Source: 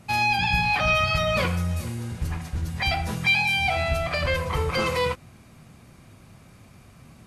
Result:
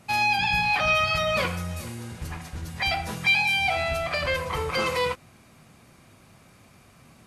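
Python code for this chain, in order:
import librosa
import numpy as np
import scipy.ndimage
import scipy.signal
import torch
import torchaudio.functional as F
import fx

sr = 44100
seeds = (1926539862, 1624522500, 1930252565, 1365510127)

y = fx.low_shelf(x, sr, hz=210.0, db=-8.5)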